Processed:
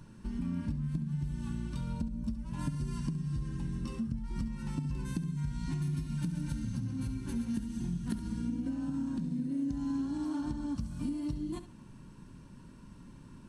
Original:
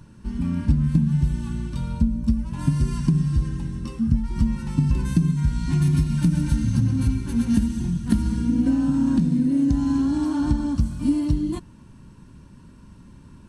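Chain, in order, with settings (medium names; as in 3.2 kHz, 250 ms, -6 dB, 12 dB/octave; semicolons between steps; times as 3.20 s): peaking EQ 74 Hz -10 dB 0.55 oct; compression 5:1, threshold -29 dBFS, peak gain reduction 13.5 dB; flutter echo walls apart 11.8 m, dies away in 0.32 s; trim -4 dB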